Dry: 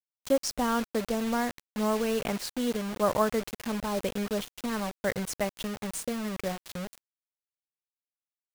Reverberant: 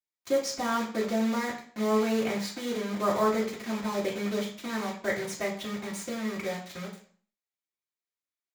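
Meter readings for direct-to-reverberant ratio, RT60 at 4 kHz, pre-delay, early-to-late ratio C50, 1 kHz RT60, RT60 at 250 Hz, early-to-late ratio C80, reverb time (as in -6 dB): -5.5 dB, 0.40 s, 3 ms, 8.0 dB, 0.45 s, 0.50 s, 12.0 dB, 0.45 s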